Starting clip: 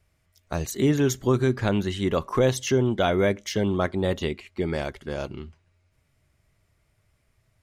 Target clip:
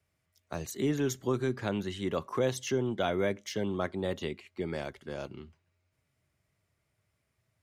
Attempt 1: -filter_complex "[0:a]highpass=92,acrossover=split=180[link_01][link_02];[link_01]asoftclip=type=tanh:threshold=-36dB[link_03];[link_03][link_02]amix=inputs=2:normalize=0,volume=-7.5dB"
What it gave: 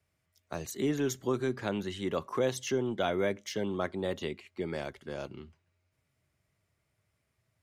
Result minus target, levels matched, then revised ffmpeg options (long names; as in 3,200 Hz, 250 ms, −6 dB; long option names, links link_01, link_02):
soft clipping: distortion +8 dB
-filter_complex "[0:a]highpass=92,acrossover=split=180[link_01][link_02];[link_01]asoftclip=type=tanh:threshold=-28dB[link_03];[link_03][link_02]amix=inputs=2:normalize=0,volume=-7.5dB"